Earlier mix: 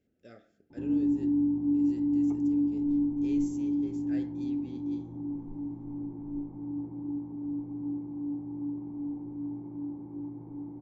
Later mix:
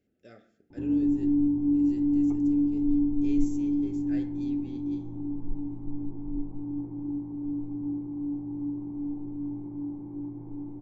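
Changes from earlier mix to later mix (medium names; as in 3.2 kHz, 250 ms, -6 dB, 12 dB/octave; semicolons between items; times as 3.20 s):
background: remove high-pass 120 Hz 6 dB/octave; reverb: on, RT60 0.70 s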